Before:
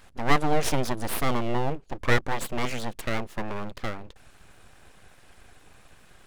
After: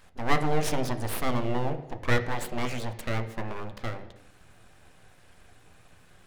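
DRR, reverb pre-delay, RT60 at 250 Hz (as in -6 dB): 7.0 dB, 11 ms, 0.85 s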